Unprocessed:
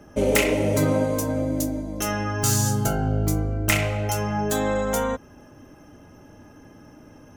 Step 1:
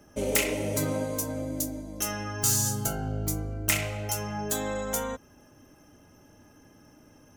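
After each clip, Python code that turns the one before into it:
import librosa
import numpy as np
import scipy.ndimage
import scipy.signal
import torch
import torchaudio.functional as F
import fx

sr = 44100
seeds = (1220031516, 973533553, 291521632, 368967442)

y = fx.high_shelf(x, sr, hz=3700.0, db=10.0)
y = y * librosa.db_to_amplitude(-8.5)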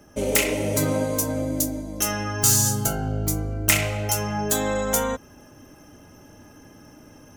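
y = fx.rider(x, sr, range_db=10, speed_s=2.0)
y = y * librosa.db_to_amplitude(5.5)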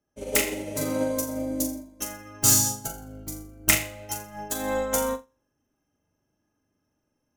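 y = fx.room_flutter(x, sr, wall_m=7.2, rt60_s=0.52)
y = fx.upward_expand(y, sr, threshold_db=-35.0, expansion=2.5)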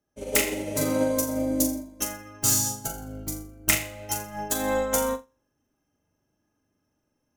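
y = fx.rider(x, sr, range_db=4, speed_s=0.5)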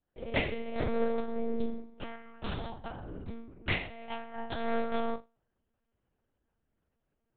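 y = fx.lpc_monotone(x, sr, seeds[0], pitch_hz=230.0, order=8)
y = y * librosa.db_to_amplitude(-4.5)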